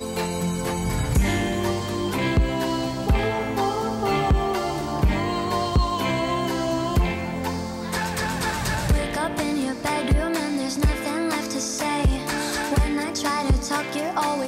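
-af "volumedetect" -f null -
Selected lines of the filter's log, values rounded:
mean_volume: -23.3 dB
max_volume: -11.8 dB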